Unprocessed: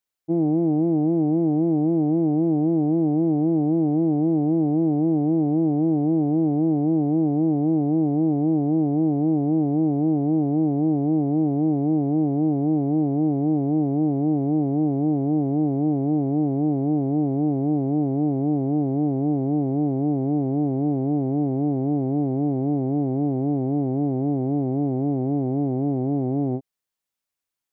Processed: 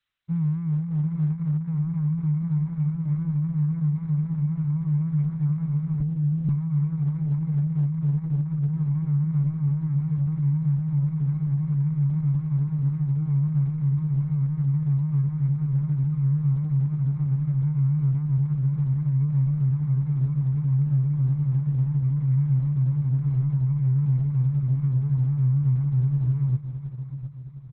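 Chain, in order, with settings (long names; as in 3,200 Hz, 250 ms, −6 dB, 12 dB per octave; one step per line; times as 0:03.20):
inverse Chebyshev band-stop filter 280–730 Hz, stop band 50 dB
reverb reduction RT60 0.91 s
graphic EQ with 15 bands 100 Hz +9 dB, 400 Hz +11 dB, 1,000 Hz +9 dB
repeating echo 710 ms, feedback 49%, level −11 dB
0:06.00–0:06.49: linear-prediction vocoder at 8 kHz pitch kept
level +7.5 dB
Opus 6 kbit/s 48,000 Hz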